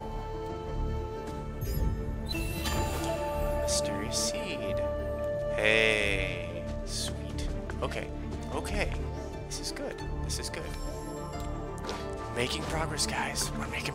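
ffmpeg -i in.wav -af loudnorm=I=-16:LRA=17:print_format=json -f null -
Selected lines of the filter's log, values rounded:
"input_i" : "-32.4",
"input_tp" : "-9.4",
"input_lra" : "6.5",
"input_thresh" : "-42.4",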